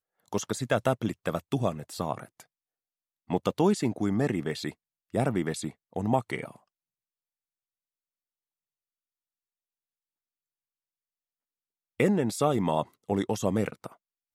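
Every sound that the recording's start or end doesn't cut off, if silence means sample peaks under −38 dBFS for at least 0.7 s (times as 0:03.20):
0:03.30–0:06.51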